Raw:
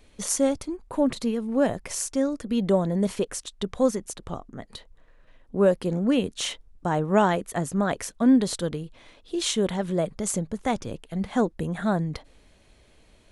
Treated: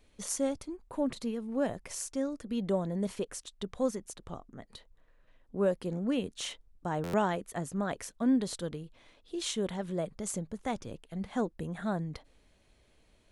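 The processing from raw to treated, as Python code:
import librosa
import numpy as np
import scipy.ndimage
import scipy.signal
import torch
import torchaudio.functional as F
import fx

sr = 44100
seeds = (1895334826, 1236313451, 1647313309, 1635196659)

y = fx.buffer_glitch(x, sr, at_s=(7.03,), block=512, repeats=8)
y = y * 10.0 ** (-8.5 / 20.0)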